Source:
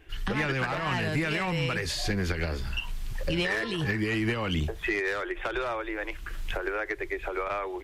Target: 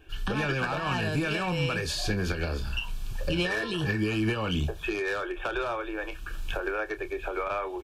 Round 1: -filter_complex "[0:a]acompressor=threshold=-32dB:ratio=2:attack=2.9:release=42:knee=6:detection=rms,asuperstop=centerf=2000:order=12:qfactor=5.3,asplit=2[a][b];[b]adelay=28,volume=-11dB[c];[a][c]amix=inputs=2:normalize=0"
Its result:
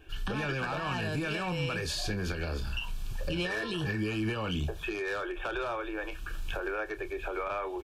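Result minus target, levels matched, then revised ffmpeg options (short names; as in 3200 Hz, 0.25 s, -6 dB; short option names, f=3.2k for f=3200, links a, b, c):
compressor: peak gain reduction +5.5 dB
-filter_complex "[0:a]asuperstop=centerf=2000:order=12:qfactor=5.3,asplit=2[a][b];[b]adelay=28,volume=-11dB[c];[a][c]amix=inputs=2:normalize=0"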